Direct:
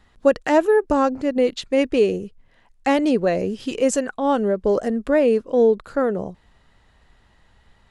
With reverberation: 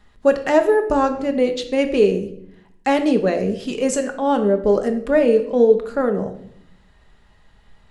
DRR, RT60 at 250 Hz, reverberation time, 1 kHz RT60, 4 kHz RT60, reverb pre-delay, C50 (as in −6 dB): 5.5 dB, 1.1 s, 0.70 s, 0.60 s, 0.55 s, 5 ms, 11.0 dB